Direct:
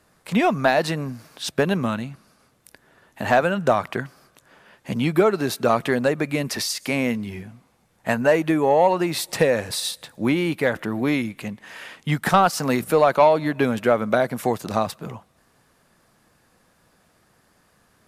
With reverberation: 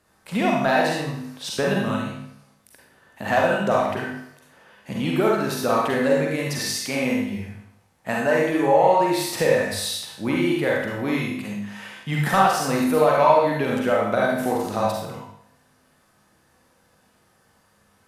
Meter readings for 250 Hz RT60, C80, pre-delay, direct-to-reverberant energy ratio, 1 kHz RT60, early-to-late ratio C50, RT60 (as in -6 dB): 0.70 s, 4.0 dB, 38 ms, -3.5 dB, 0.70 s, -0.5 dB, 0.70 s